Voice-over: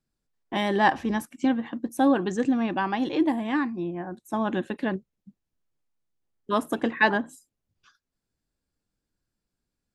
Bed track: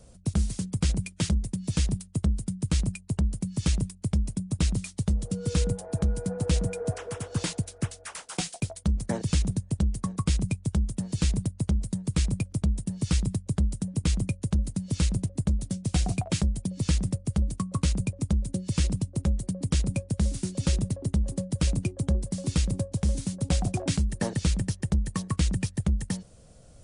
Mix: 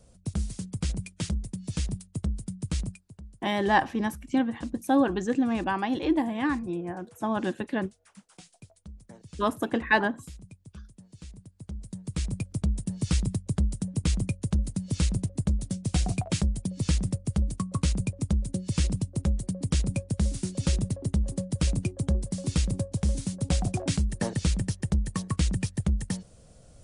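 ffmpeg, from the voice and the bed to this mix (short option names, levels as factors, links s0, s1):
-filter_complex "[0:a]adelay=2900,volume=0.841[s0];[1:a]volume=5.62,afade=t=out:st=2.83:d=0.21:silence=0.16788,afade=t=in:st=11.53:d=1.26:silence=0.105925[s1];[s0][s1]amix=inputs=2:normalize=0"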